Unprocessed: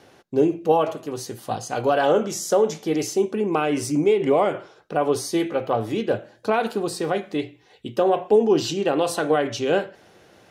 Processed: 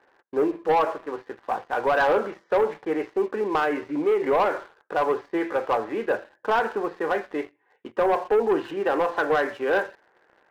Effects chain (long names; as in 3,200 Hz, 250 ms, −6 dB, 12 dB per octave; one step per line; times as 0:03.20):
loudspeaker in its box 440–2,000 Hz, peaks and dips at 670 Hz −4 dB, 960 Hz +6 dB, 1,700 Hz +7 dB
leveller curve on the samples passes 2
level −5 dB